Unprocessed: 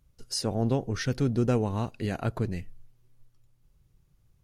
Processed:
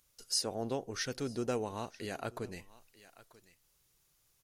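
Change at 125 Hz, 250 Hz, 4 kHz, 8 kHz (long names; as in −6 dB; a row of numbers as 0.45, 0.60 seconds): −17.0, −11.5, −1.0, +0.5 decibels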